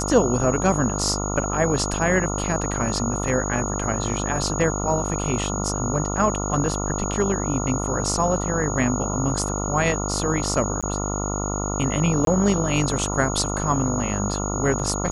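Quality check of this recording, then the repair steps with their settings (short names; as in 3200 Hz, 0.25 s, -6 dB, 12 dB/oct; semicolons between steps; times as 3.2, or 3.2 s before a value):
buzz 50 Hz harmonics 28 -27 dBFS
tone 6700 Hz -30 dBFS
10.81–10.83 gap 16 ms
12.25–12.27 gap 22 ms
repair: notch 6700 Hz, Q 30; de-hum 50 Hz, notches 28; interpolate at 10.81, 16 ms; interpolate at 12.25, 22 ms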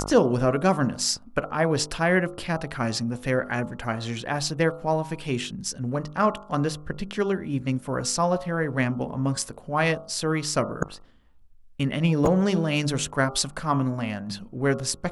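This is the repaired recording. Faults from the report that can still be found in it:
none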